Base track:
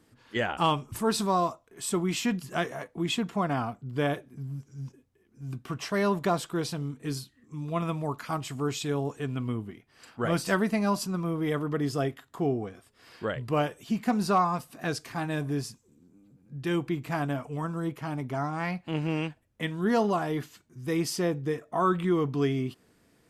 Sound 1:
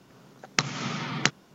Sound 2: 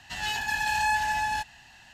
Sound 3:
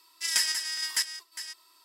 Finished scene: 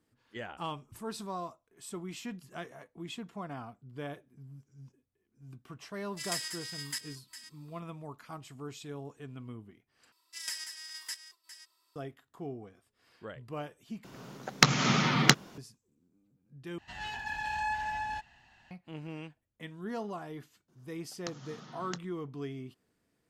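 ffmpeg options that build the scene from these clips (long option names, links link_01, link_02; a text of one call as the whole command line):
ffmpeg -i bed.wav -i cue0.wav -i cue1.wav -i cue2.wav -filter_complex "[3:a]asplit=2[link_01][link_02];[1:a]asplit=2[link_03][link_04];[0:a]volume=-13dB[link_05];[link_01]bandreject=frequency=5600:width=10[link_06];[link_03]acontrast=83[link_07];[2:a]aemphasis=mode=reproduction:type=75kf[link_08];[link_04]equalizer=frequency=2300:width_type=o:width=0.41:gain=-12.5[link_09];[link_05]asplit=4[link_10][link_11][link_12][link_13];[link_10]atrim=end=10.124[link_14];[link_02]atrim=end=1.84,asetpts=PTS-STARTPTS,volume=-12.5dB[link_15];[link_11]atrim=start=11.956:end=14.044[link_16];[link_07]atrim=end=1.54,asetpts=PTS-STARTPTS,volume=-1.5dB[link_17];[link_12]atrim=start=15.576:end=16.784[link_18];[link_08]atrim=end=1.93,asetpts=PTS-STARTPTS,volume=-6.5dB[link_19];[link_13]atrim=start=18.706[link_20];[link_06]atrim=end=1.84,asetpts=PTS-STARTPTS,volume=-9.5dB,afade=type=in:duration=0.004:curve=hsin,afade=type=out:start_time=1.836:duration=0.004:curve=hsin,adelay=5960[link_21];[link_09]atrim=end=1.54,asetpts=PTS-STARTPTS,volume=-17dB,afade=type=in:duration=0.004:curve=hsin,afade=type=out:start_time=1.536:duration=0.004:curve=hsin,adelay=911988S[link_22];[link_14][link_15]acrossfade=duration=0.004:curve1=hsin:curve2=hsin[link_23];[link_23][link_16]acrossfade=duration=0.004:curve1=hsin:curve2=hsin[link_24];[link_24][link_17]acrossfade=duration=0.004:curve1=hsin:curve2=hsin[link_25];[link_25][link_18]acrossfade=duration=0.004:curve1=hsin:curve2=hsin[link_26];[link_26][link_19]acrossfade=duration=0.004:curve1=hsin:curve2=hsin[link_27];[link_27][link_20]acrossfade=duration=0.004:curve1=hsin:curve2=hsin[link_28];[link_28][link_21][link_22]amix=inputs=3:normalize=0" out.wav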